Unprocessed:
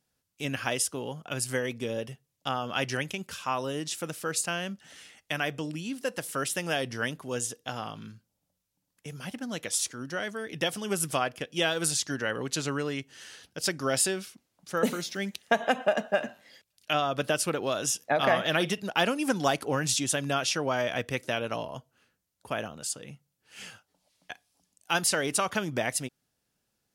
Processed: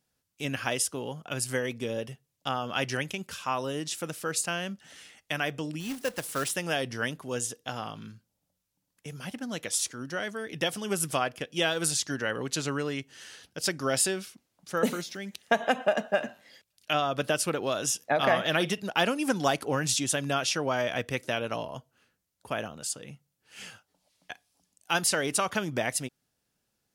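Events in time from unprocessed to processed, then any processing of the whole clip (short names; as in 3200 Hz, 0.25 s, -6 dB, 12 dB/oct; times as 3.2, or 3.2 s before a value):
5.8–6.51 companded quantiser 4-bit
15.01–15.48 compressor 2:1, threshold -38 dBFS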